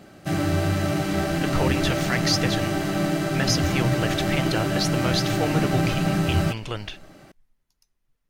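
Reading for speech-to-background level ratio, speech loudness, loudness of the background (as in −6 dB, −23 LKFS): −4.0 dB, −28.0 LKFS, −24.0 LKFS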